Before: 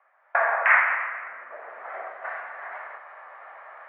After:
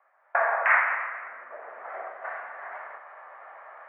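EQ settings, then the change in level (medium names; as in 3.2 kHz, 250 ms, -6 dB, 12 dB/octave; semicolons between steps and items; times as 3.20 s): treble shelf 2.6 kHz -9.5 dB; 0.0 dB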